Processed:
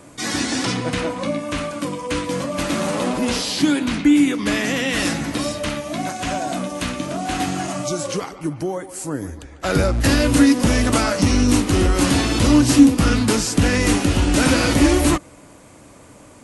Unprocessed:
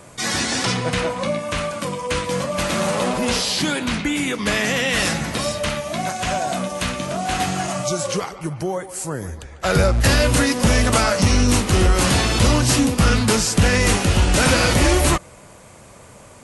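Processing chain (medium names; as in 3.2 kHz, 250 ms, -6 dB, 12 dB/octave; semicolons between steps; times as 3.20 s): peaking EQ 290 Hz +13.5 dB 0.34 oct; trim -2.5 dB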